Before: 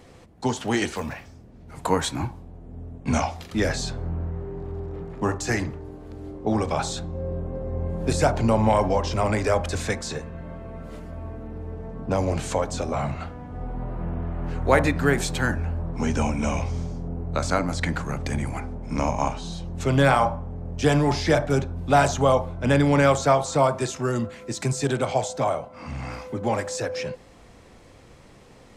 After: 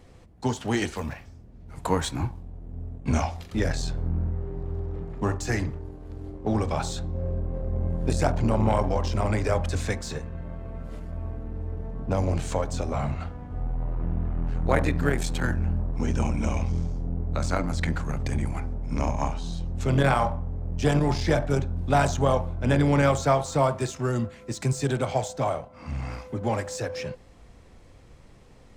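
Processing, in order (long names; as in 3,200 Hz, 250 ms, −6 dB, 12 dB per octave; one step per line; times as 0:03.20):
low-shelf EQ 97 Hz +11.5 dB
in parallel at −6 dB: dead-zone distortion −33.5 dBFS
on the sum: saturating transformer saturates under 340 Hz
level −6 dB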